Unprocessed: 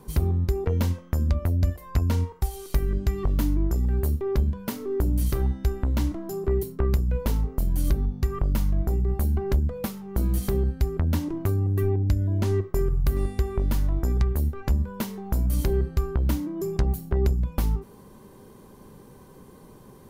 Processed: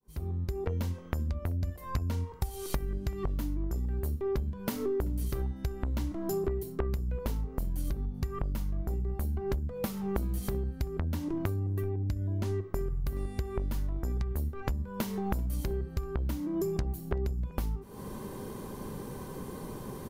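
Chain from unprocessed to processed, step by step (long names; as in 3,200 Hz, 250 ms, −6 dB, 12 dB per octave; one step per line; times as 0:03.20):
fade in at the beginning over 2.37 s
downward compressor 16 to 1, threshold −36 dBFS, peak gain reduction 20.5 dB
slap from a distant wall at 66 metres, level −24 dB
level +8 dB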